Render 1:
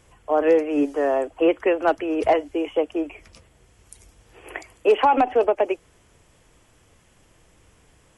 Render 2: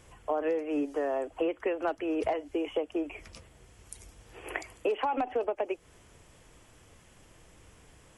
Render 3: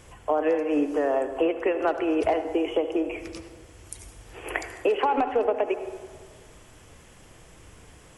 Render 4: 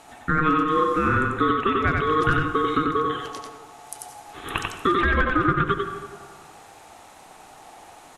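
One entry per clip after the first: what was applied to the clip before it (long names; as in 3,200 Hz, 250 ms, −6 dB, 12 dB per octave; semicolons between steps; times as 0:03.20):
downward compressor 5 to 1, threshold −28 dBFS, peak gain reduction 14 dB
convolution reverb RT60 1.6 s, pre-delay 62 ms, DRR 9 dB; level +6 dB
ring modulation 780 Hz; single-tap delay 92 ms −3 dB; level +4.5 dB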